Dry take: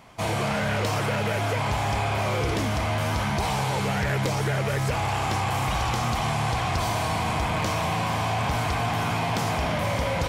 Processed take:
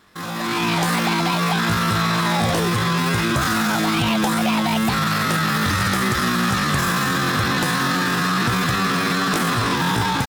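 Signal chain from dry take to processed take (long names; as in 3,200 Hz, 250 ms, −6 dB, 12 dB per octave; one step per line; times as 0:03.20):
pitch vibrato 2.3 Hz 19 cents
automatic gain control gain up to 10 dB
pitch shifter +8.5 semitones
level −4 dB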